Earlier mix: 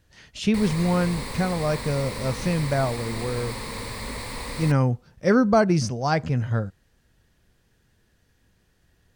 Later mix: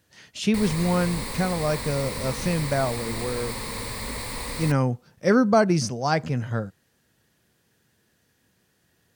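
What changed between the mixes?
speech: add high-pass 130 Hz 12 dB/octave; master: add treble shelf 8.5 kHz +7.5 dB

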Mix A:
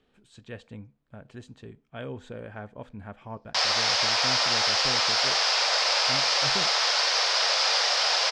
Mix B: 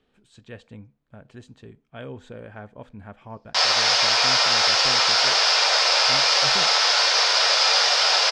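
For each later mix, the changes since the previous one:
background: send +11.5 dB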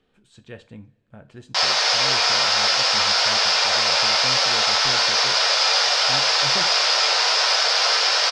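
speech: send on; background: entry -2.00 s

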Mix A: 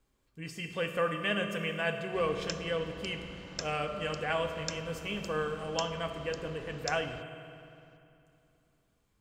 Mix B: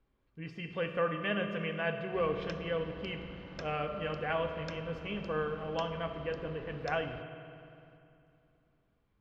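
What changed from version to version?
master: add distance through air 290 m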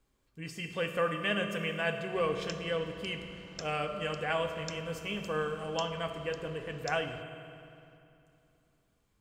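background -5.5 dB; master: remove distance through air 290 m

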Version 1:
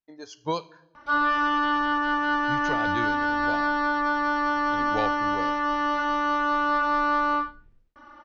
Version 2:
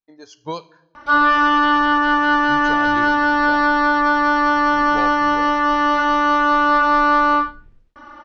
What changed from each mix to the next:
background +8.5 dB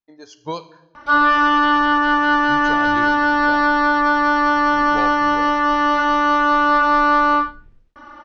speech: send +6.0 dB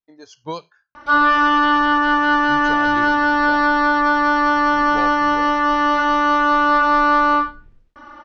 reverb: off

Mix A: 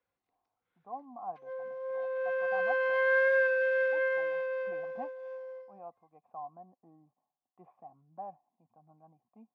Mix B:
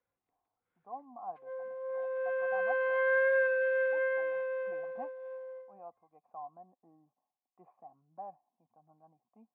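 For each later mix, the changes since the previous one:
speech: add bass shelf 170 Hz -11.5 dB; master: add distance through air 350 m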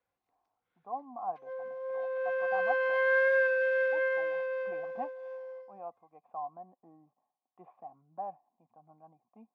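speech +4.5 dB; master: remove distance through air 350 m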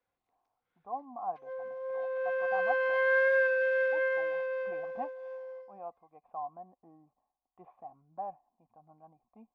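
speech: remove high-pass 120 Hz 24 dB/octave

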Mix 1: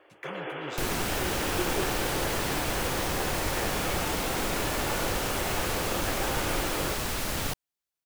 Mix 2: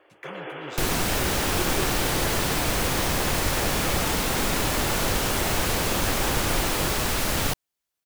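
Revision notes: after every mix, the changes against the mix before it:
second sound +6.0 dB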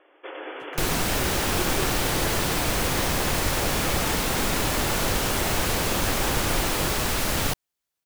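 speech: entry +0.50 s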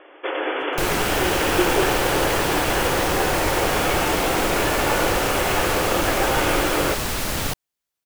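first sound +11.5 dB

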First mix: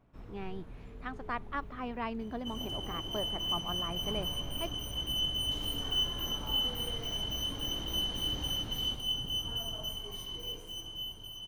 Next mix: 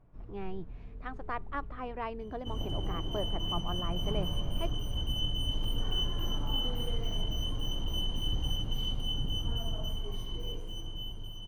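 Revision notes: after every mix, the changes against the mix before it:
speech: add peaking EQ 230 Hz -13.5 dB 0.39 oct; first sound -8.0 dB; master: add tilt EQ -2.5 dB/octave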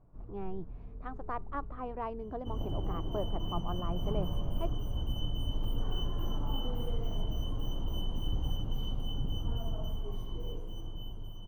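master: add high-order bell 4.2 kHz -10 dB 3 oct

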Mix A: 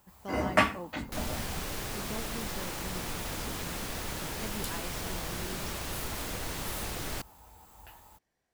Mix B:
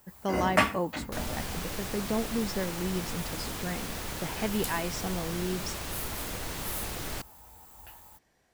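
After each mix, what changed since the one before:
speech +11.5 dB; first sound: add treble shelf 7.6 kHz +7.5 dB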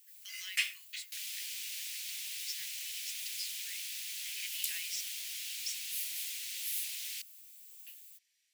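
master: add steep high-pass 2.3 kHz 36 dB/octave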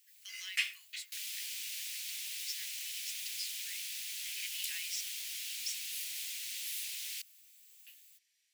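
first sound: add treble shelf 7.6 kHz -7.5 dB

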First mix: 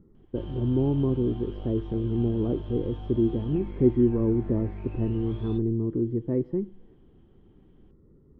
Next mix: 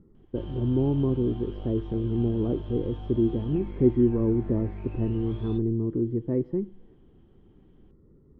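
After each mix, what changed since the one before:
no change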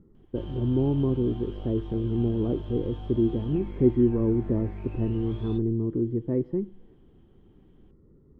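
background: remove distance through air 63 m

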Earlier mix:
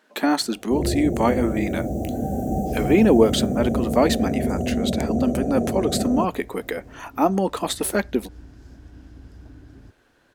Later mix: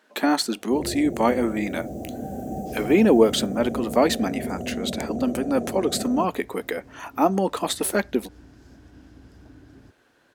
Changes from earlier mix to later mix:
first sound -5.5 dB; master: add high-pass 140 Hz 6 dB/octave

